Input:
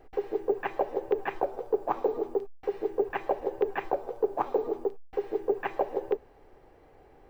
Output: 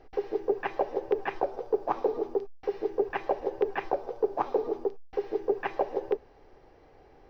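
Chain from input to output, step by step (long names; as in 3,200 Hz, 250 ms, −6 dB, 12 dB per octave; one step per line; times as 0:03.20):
high shelf with overshoot 6,800 Hz −8.5 dB, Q 3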